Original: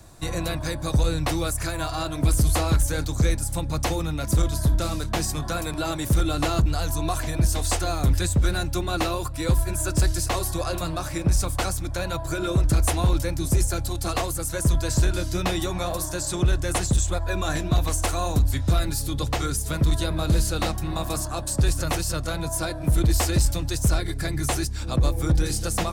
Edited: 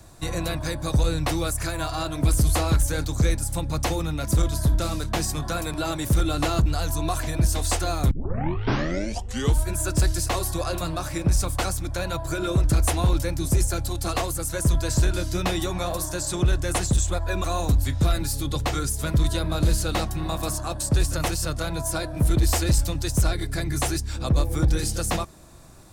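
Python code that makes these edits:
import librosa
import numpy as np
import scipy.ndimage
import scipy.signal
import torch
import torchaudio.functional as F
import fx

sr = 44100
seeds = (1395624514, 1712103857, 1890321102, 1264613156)

y = fx.edit(x, sr, fx.tape_start(start_s=8.11, length_s=1.59),
    fx.cut(start_s=17.44, length_s=0.67), tone=tone)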